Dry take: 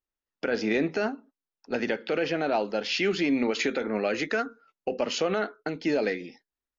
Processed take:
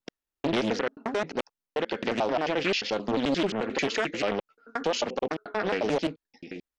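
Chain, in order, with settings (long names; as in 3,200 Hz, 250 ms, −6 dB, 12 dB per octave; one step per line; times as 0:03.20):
slices reordered back to front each 88 ms, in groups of 5
highs frequency-modulated by the lows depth 0.62 ms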